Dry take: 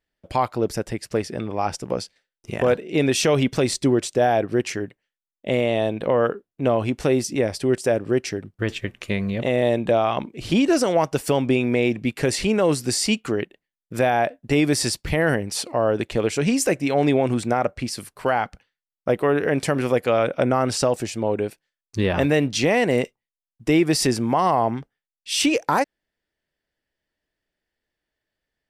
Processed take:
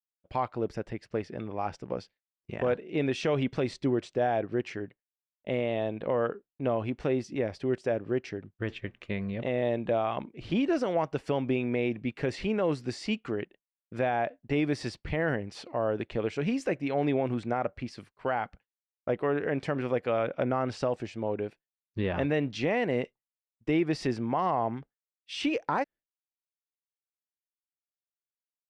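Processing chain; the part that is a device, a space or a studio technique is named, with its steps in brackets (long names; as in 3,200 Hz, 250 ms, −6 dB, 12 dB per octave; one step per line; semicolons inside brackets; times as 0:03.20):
hearing-loss simulation (low-pass filter 3,100 Hz 12 dB per octave; downward expander −37 dBFS)
level −8.5 dB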